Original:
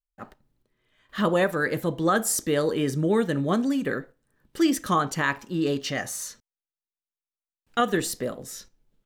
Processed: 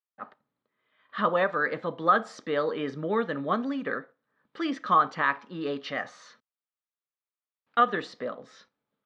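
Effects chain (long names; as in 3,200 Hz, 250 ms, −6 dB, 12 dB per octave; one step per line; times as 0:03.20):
loudspeaker in its box 270–3,700 Hz, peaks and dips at 350 Hz −9 dB, 1,200 Hz +7 dB, 2,800 Hz −5 dB
level −1.5 dB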